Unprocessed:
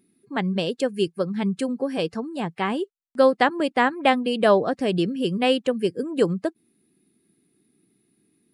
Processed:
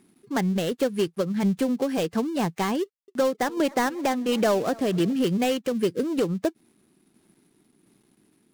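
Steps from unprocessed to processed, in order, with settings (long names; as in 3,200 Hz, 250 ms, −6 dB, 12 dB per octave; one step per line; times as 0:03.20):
gap after every zero crossing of 0.12 ms
downward compressor 3 to 1, threshold −24 dBFS, peak gain reduction 9.5 dB
sine wavefolder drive 5 dB, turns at −11.5 dBFS
shaped tremolo saw down 1.4 Hz, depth 35%
0:02.82–0:05.13: feedback echo with a swinging delay time 265 ms, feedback 66%, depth 179 cents, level −23 dB
level −3 dB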